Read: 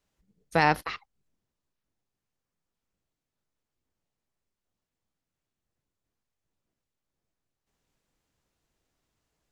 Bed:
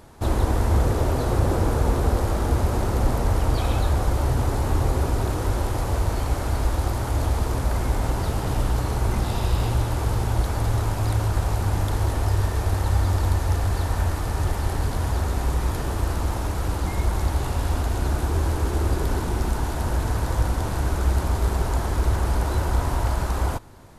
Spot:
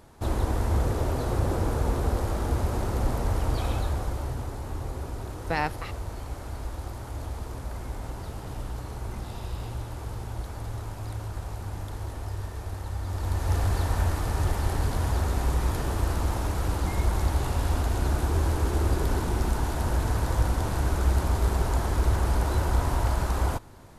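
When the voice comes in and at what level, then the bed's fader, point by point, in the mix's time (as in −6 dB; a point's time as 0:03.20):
4.95 s, −5.5 dB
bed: 0:03.68 −5 dB
0:04.56 −12 dB
0:13.00 −12 dB
0:13.57 −2 dB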